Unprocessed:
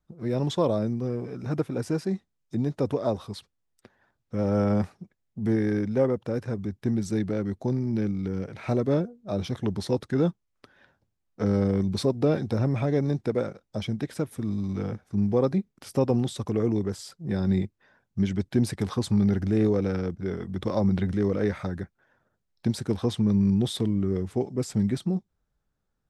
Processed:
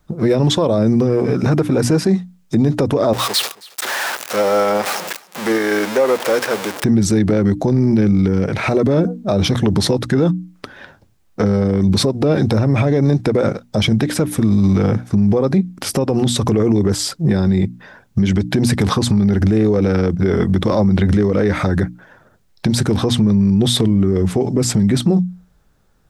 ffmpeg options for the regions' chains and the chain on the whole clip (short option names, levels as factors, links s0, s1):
-filter_complex "[0:a]asettb=1/sr,asplit=3[s0][s1][s2];[s0]atrim=end=3.134[s3];[s1]atrim=start=3.13:end=6.84,asetpts=PTS-STARTPTS,afade=t=in:d=0.004:c=qsin,afade=t=out:st=3.706:d=0.004:c=qsin,aeval=exprs='val(0)+0.5*0.0178*sgn(val(0))':c=same,highpass=640,aecho=1:1:271:0.075,atrim=end_sample=163611[s4];[s2]atrim=start=6.836[s5];[s3][s4]acrossfade=d=0.004:c1=hsin:c2=qsin[s6];[s6][s5]acrossfade=d=0.004:c1=qsin:c2=hsin,bandreject=f=60:t=h:w=6,bandreject=f=120:t=h:w=6,bandreject=f=180:t=h:w=6,bandreject=f=240:t=h:w=6,bandreject=f=300:t=h:w=6,acompressor=threshold=0.0501:ratio=6,alimiter=level_in=20:limit=0.891:release=50:level=0:latency=1,volume=0.531"